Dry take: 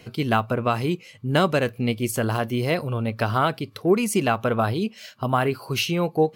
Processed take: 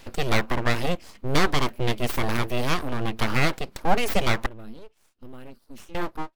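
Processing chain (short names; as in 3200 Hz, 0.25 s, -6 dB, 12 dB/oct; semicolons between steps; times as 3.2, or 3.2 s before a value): ending faded out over 0.53 s; 4.46–5.95 passive tone stack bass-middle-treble 10-0-1; full-wave rectifier; gain +2 dB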